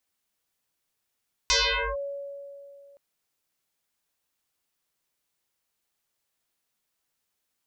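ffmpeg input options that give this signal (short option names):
-f lavfi -i "aevalsrc='0.126*pow(10,-3*t/2.68)*sin(2*PI*562*t+12*clip(1-t/0.46,0,1)*sin(2*PI*0.91*562*t))':d=1.47:s=44100"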